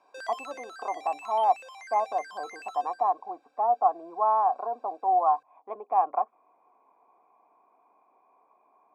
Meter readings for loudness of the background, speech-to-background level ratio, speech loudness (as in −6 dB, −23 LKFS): −44.0 LKFS, 16.0 dB, −28.0 LKFS